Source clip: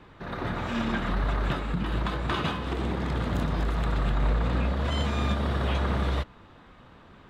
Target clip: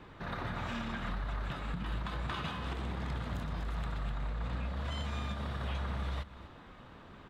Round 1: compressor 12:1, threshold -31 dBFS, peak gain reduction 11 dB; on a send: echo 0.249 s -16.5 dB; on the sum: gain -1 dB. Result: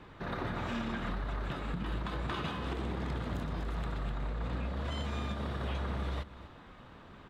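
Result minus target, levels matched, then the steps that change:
500 Hz band +3.0 dB
add after compressor: dynamic EQ 360 Hz, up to -7 dB, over -52 dBFS, Q 1.1

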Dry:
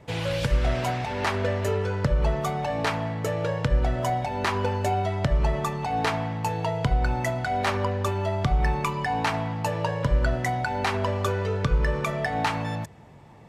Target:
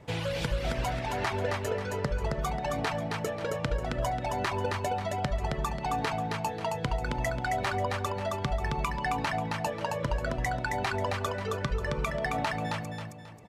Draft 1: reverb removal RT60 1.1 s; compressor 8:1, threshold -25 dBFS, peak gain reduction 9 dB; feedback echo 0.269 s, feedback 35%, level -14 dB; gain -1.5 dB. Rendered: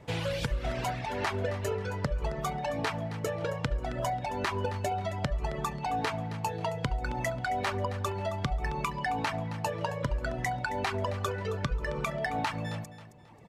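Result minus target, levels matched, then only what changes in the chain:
echo-to-direct -10.5 dB
change: feedback echo 0.269 s, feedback 35%, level -3.5 dB

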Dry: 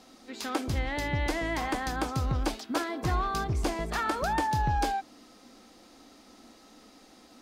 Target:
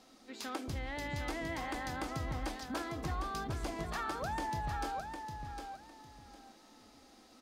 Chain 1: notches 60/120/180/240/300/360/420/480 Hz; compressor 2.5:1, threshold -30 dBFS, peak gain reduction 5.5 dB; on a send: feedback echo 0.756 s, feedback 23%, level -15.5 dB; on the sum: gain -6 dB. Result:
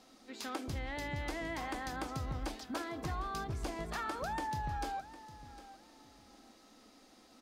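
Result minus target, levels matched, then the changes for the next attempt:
echo-to-direct -9 dB
change: feedback echo 0.756 s, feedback 23%, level -6.5 dB

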